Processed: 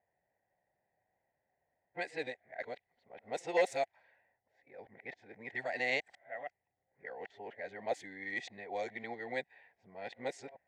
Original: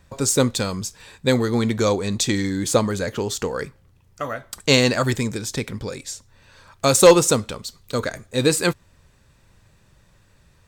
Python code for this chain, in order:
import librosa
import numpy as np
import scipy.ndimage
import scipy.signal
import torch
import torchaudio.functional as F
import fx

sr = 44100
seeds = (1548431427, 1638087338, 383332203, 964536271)

y = np.flip(x).copy()
y = fx.double_bandpass(y, sr, hz=1200.0, octaves=1.4)
y = fx.env_lowpass(y, sr, base_hz=980.0, full_db=-28.0)
y = y * 10.0 ** (-5.0 / 20.0)